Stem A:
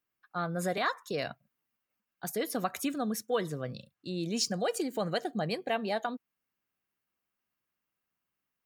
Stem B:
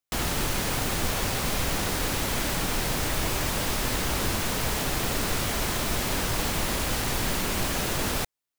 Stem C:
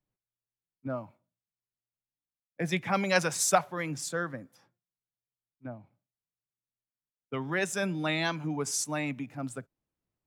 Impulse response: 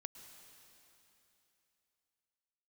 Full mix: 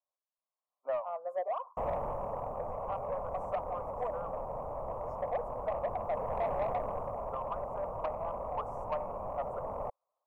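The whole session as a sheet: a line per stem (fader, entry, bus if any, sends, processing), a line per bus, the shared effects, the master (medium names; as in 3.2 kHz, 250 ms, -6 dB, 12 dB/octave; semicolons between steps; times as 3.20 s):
-0.5 dB, 0.70 s, bus A, no send, none
-0.5 dB, 1.65 s, no bus, no send, auto duck -6 dB, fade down 0.75 s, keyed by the third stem
-4.0 dB, 0.00 s, bus A, no send, high-order bell 1.9 kHz +8.5 dB; level rider gain up to 13 dB
bus A: 0.0 dB, high-pass 550 Hz 24 dB/octave; compression 6:1, threshold -30 dBFS, peak gain reduction 15 dB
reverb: none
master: elliptic low-pass 1.1 kHz, stop band 40 dB; resonant low shelf 440 Hz -8.5 dB, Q 3; saturation -25.5 dBFS, distortion -17 dB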